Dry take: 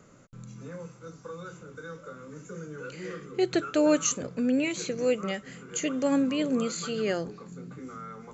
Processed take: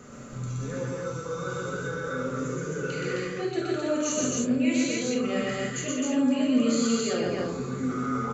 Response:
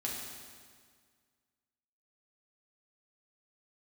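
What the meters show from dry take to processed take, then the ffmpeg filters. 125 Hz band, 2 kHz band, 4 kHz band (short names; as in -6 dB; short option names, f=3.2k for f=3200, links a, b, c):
+8.0 dB, +4.0 dB, +2.5 dB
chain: -filter_complex "[0:a]areverse,acompressor=threshold=-40dB:ratio=5,areverse,aecho=1:1:122.4|262.4:0.891|0.891[a];[1:a]atrim=start_sample=2205,atrim=end_sample=3528[b];[a][b]afir=irnorm=-1:irlink=0,volume=9dB"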